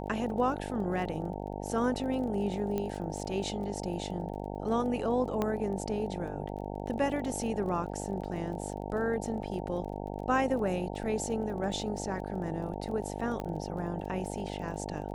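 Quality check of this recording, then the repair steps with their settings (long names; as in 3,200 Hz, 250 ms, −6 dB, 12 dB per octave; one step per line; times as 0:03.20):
mains buzz 50 Hz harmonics 18 −38 dBFS
surface crackle 25 per second −41 dBFS
0:02.78: click −20 dBFS
0:05.42: click −17 dBFS
0:13.40: click −23 dBFS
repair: click removal
hum removal 50 Hz, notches 18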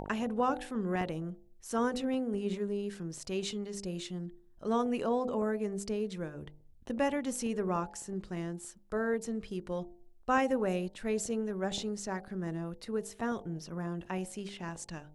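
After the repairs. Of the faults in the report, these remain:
0:13.40: click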